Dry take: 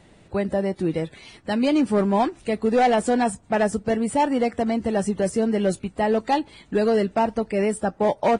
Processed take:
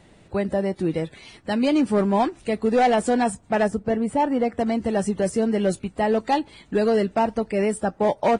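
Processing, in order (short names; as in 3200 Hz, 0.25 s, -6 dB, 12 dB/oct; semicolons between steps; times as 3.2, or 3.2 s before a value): 3.68–4.59 high shelf 2600 Hz -10 dB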